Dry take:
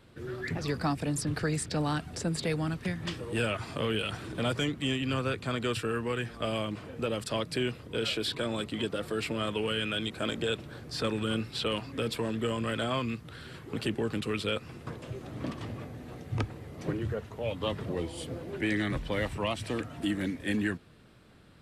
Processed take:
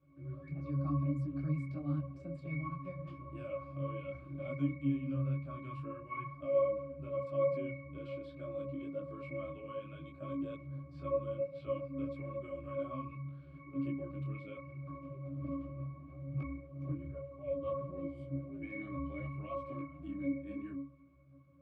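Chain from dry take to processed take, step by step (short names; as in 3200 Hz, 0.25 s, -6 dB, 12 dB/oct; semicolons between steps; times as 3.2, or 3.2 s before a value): HPF 96 Hz; octave resonator C#, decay 0.76 s; detuned doubles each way 23 cents; gain +16 dB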